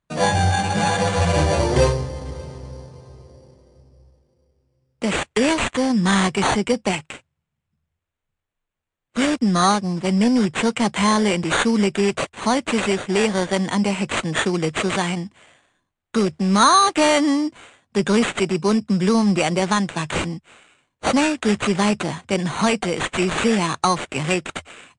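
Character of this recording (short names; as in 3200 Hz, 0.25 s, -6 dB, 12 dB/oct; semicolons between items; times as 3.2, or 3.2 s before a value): aliases and images of a low sample rate 5200 Hz, jitter 0%; MP3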